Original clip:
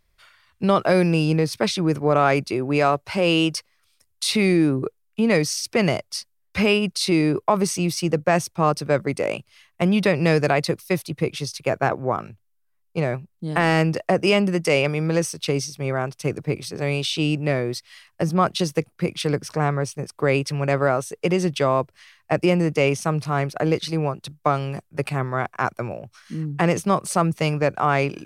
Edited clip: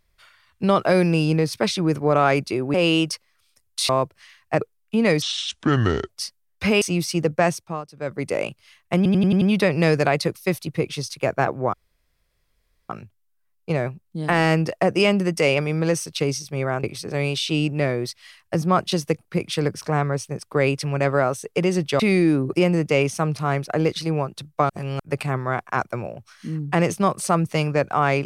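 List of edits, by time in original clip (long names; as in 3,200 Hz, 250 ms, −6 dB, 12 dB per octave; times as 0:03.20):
0:02.74–0:03.18: remove
0:04.33–0:04.86: swap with 0:21.67–0:22.39
0:05.47–0:06.03: play speed 64%
0:06.75–0:07.70: remove
0:08.32–0:09.23: duck −18 dB, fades 0.41 s
0:09.85: stutter 0.09 s, 6 plays
0:12.17: splice in room tone 1.16 s
0:16.11–0:16.51: remove
0:24.56–0:24.86: reverse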